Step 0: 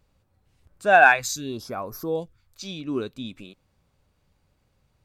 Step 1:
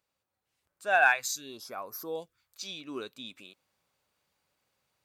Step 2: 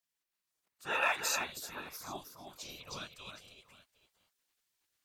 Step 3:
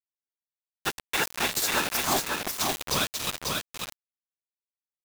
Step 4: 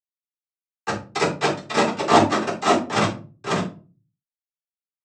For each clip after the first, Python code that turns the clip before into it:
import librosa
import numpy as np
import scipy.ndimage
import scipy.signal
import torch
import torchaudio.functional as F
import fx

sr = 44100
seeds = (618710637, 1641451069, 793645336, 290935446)

y1 = fx.high_shelf(x, sr, hz=11000.0, db=5.5)
y1 = fx.rider(y1, sr, range_db=3, speed_s=2.0)
y1 = fx.highpass(y1, sr, hz=900.0, slope=6)
y1 = y1 * 10.0 ** (-5.0 / 20.0)
y2 = fx.whisperise(y1, sr, seeds[0])
y2 = fx.echo_multitap(y2, sr, ms=(316, 766), db=(-6.0, -19.0))
y2 = fx.spec_gate(y2, sr, threshold_db=-10, keep='weak')
y3 = fx.over_compress(y2, sr, threshold_db=-39.0, ratio=-0.5)
y3 = fx.quant_companded(y3, sr, bits=2)
y3 = y3 + 10.0 ** (-3.5 / 20.0) * np.pad(y3, (int(543 * sr / 1000.0), 0))[:len(y3)]
y3 = y3 * 10.0 ** (4.5 / 20.0)
y4 = scipy.signal.medfilt(y3, 25)
y4 = fx.noise_vocoder(y4, sr, seeds[1], bands=12)
y4 = fx.room_shoebox(y4, sr, seeds[2], volume_m3=160.0, walls='furnished', distance_m=3.8)
y4 = y4 * 10.0 ** (5.5 / 20.0)